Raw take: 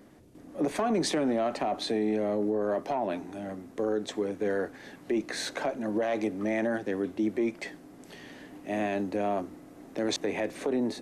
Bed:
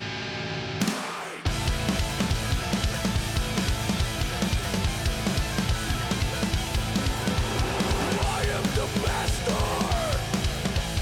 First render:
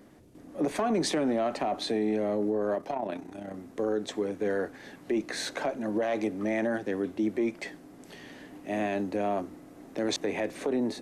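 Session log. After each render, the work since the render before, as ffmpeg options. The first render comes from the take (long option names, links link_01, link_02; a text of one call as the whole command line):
ffmpeg -i in.wav -filter_complex "[0:a]asplit=3[link_01][link_02][link_03];[link_01]afade=type=out:start_time=2.75:duration=0.02[link_04];[link_02]tremolo=f=31:d=0.621,afade=type=in:start_time=2.75:duration=0.02,afade=type=out:start_time=3.53:duration=0.02[link_05];[link_03]afade=type=in:start_time=3.53:duration=0.02[link_06];[link_04][link_05][link_06]amix=inputs=3:normalize=0" out.wav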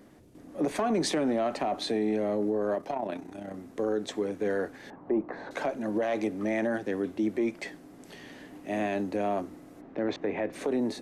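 ffmpeg -i in.wav -filter_complex "[0:a]asettb=1/sr,asplit=3[link_01][link_02][link_03];[link_01]atrim=end=4.904[link_04];[link_02]atrim=start=4.9:end=5.51,asetpts=PTS-STARTPTS,afade=type=in:duration=0.004:curve=qsin,afade=type=out:start_time=0.606:duration=0.004:curve=qsin,lowpass=frequency=970:width_type=q:width=2.3[link_05];[link_03]atrim=start=5.506[link_06];[link_04][link_05]acrossfade=duration=0.004:curve1=hsin:curve2=qsin[link_07];[link_07][link_06]acrossfade=duration=0.004:curve1=qsin:curve2=hsin,asplit=3[link_08][link_09][link_10];[link_08]afade=type=out:start_time=9.8:duration=0.02[link_11];[link_09]lowpass=2200,afade=type=in:start_time=9.8:duration=0.02,afade=type=out:start_time=10.52:duration=0.02[link_12];[link_10]afade=type=in:start_time=10.52:duration=0.02[link_13];[link_11][link_12][link_13]amix=inputs=3:normalize=0" out.wav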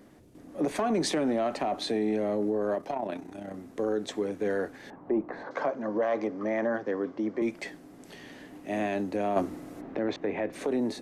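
ffmpeg -i in.wav -filter_complex "[0:a]asettb=1/sr,asplit=3[link_01][link_02][link_03];[link_01]atrim=end=5.434[link_04];[link_02]atrim=start=5.43:end=7.42,asetpts=PTS-STARTPTS,afade=type=in:duration=0.004:curve=qsin,afade=type=out:start_time=1.986:duration=0.004:curve=qsin,highpass=frequency=120:width=0.5412,highpass=frequency=120:width=1.3066,equalizer=frequency=190:width_type=q:width=4:gain=-5,equalizer=frequency=340:width_type=q:width=4:gain=-3,equalizer=frequency=510:width_type=q:width=4:gain=4,equalizer=frequency=1100:width_type=q:width=4:gain=8,equalizer=frequency=2600:width_type=q:width=4:gain=-8,equalizer=frequency=3800:width_type=q:width=4:gain=-9,lowpass=frequency=5300:width=0.5412,lowpass=frequency=5300:width=1.3066[link_05];[link_03]atrim=start=7.416[link_06];[link_04][link_05]acrossfade=duration=0.004:curve1=hsin:curve2=qsin[link_07];[link_07][link_06]acrossfade=duration=0.004:curve1=qsin:curve2=hsin,asettb=1/sr,asplit=3[link_08][link_09][link_10];[link_08]atrim=end=9.364[link_11];[link_09]atrim=start=9.36:end=9.98,asetpts=PTS-STARTPTS,afade=type=in:duration=0.004:curve=qsin,afade=type=out:start_time=0.616:duration=0.004:curve=qsin,acontrast=64[link_12];[link_10]atrim=start=9.976[link_13];[link_11][link_12]acrossfade=duration=0.004:curve1=hsin:curve2=qsin[link_14];[link_14][link_13]acrossfade=duration=0.004:curve1=qsin:curve2=hsin" out.wav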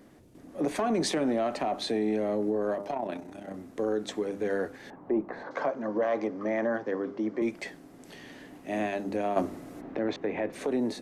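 ffmpeg -i in.wav -af "bandreject=frequency=100.6:width_type=h:width=4,bandreject=frequency=201.2:width_type=h:width=4,bandreject=frequency=301.8:width_type=h:width=4,bandreject=frequency=402.4:width_type=h:width=4,bandreject=frequency=503:width_type=h:width=4,bandreject=frequency=603.6:width_type=h:width=4,bandreject=frequency=704.2:width_type=h:width=4,bandreject=frequency=804.8:width_type=h:width=4,bandreject=frequency=905.4:width_type=h:width=4,bandreject=frequency=1006:width_type=h:width=4,bandreject=frequency=1106.6:width_type=h:width=4,bandreject=frequency=1207.2:width_type=h:width=4,bandreject=frequency=1307.8:width_type=h:width=4,bandreject=frequency=1408.4:width_type=h:width=4" out.wav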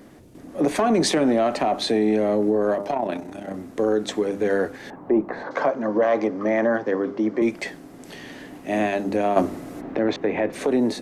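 ffmpeg -i in.wav -af "volume=8dB" out.wav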